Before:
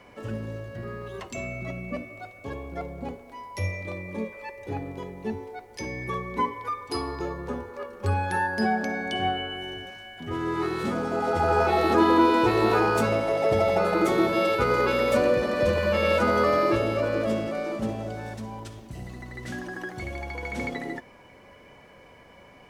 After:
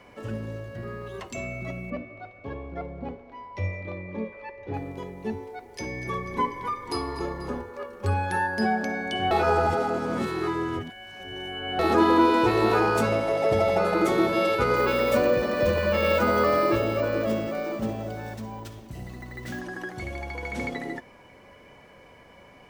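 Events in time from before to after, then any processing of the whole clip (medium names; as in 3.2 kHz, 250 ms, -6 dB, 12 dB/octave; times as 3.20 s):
1.90–4.74 s: distance through air 230 m
5.38–7.62 s: frequency-shifting echo 244 ms, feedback 61%, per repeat -31 Hz, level -12.5 dB
9.31–11.79 s: reverse
14.76–19.61 s: careless resampling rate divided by 2×, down none, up hold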